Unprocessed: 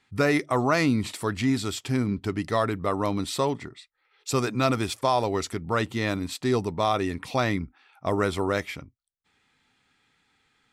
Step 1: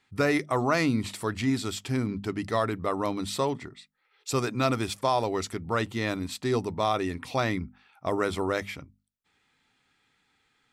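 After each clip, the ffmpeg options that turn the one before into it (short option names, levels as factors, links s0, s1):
-af "bandreject=f=50:t=h:w=6,bandreject=f=100:t=h:w=6,bandreject=f=150:t=h:w=6,bandreject=f=200:t=h:w=6,bandreject=f=250:t=h:w=6,volume=0.794"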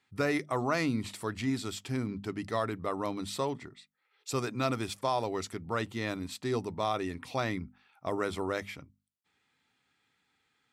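-af "highpass=66,volume=0.562"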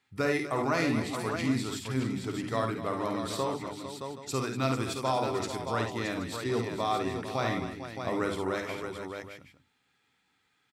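-af "aecho=1:1:53|69|244|451|621|775:0.473|0.335|0.237|0.282|0.447|0.168"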